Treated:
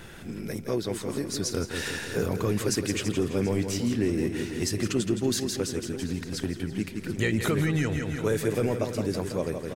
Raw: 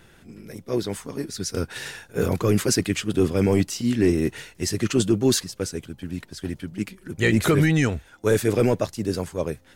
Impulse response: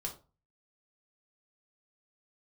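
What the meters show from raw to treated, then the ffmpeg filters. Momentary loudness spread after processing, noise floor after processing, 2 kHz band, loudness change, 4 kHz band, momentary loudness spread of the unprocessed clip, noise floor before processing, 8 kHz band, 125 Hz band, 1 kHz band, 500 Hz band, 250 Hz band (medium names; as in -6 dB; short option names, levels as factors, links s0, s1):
6 LU, -39 dBFS, -4.0 dB, -5.0 dB, -3.5 dB, 13 LU, -53 dBFS, -3.5 dB, -4.5 dB, -4.5 dB, -5.0 dB, -4.5 dB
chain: -filter_complex "[0:a]asplit=2[s0][s1];[s1]aecho=0:1:166|332|498|664|830:0.355|0.16|0.0718|0.0323|0.0145[s2];[s0][s2]amix=inputs=2:normalize=0,acompressor=threshold=0.0126:ratio=2.5,asplit=2[s3][s4];[s4]adelay=733,lowpass=f=4300:p=1,volume=0.2,asplit=2[s5][s6];[s6]adelay=733,lowpass=f=4300:p=1,volume=0.54,asplit=2[s7][s8];[s8]adelay=733,lowpass=f=4300:p=1,volume=0.54,asplit=2[s9][s10];[s10]adelay=733,lowpass=f=4300:p=1,volume=0.54,asplit=2[s11][s12];[s12]adelay=733,lowpass=f=4300:p=1,volume=0.54[s13];[s5][s7][s9][s11][s13]amix=inputs=5:normalize=0[s14];[s3][s14]amix=inputs=2:normalize=0,volume=2.37"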